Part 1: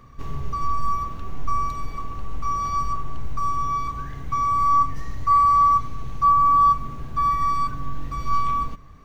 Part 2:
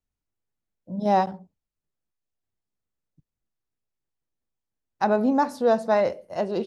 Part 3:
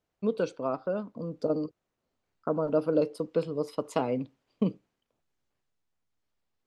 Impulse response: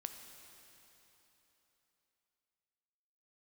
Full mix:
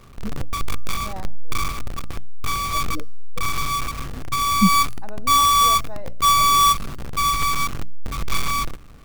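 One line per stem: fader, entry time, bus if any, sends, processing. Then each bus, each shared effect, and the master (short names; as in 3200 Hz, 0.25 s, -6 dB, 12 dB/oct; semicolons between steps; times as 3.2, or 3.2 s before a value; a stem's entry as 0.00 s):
+2.0 dB, 0.00 s, no send, half-waves squared off; notches 60/120/180/240/300 Hz; resonator 240 Hz, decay 0.55 s, harmonics odd, mix 40%
-17.0 dB, 0.00 s, no send, low-pass opened by the level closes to 460 Hz, open at -19.5 dBFS
+0.5 dB, 0.00 s, no send, bell 120 Hz +10 dB 2.1 oct; spectral expander 4:1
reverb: off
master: dry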